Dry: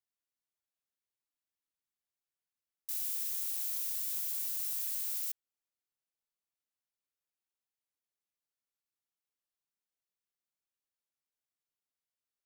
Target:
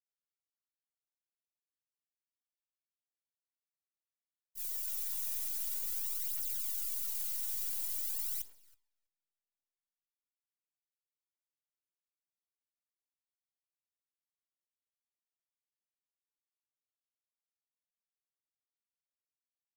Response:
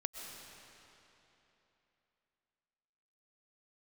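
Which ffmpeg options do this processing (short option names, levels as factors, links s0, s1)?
-filter_complex "[0:a]highpass=450,aeval=exprs='(tanh(100*val(0)+0.45)-tanh(0.45))/100':c=same,aecho=1:1:2.1:0.33,atempo=0.63,alimiter=level_in=10.6:limit=0.0631:level=0:latency=1:release=172,volume=0.0944,asplit=2[s0][s1];[s1]adelay=324,lowpass=f=3800:p=1,volume=0.447,asplit=2[s2][s3];[s3]adelay=324,lowpass=f=3800:p=1,volume=0.47,asplit=2[s4][s5];[s5]adelay=324,lowpass=f=3800:p=1,volume=0.47,asplit=2[s6][s7];[s7]adelay=324,lowpass=f=3800:p=1,volume=0.47,asplit=2[s8][s9];[s9]adelay=324,lowpass=f=3800:p=1,volume=0.47,asplit=2[s10][s11];[s11]adelay=324,lowpass=f=3800:p=1,volume=0.47[s12];[s0][s2][s4][s6][s8][s10][s12]amix=inputs=7:normalize=0,aphaser=in_gain=1:out_gain=1:delay=3.4:decay=0.58:speed=0.47:type=triangular,agate=range=0.0224:threshold=0.00501:ratio=3:detection=peak,highshelf=f=3400:g=11,volume=1.41"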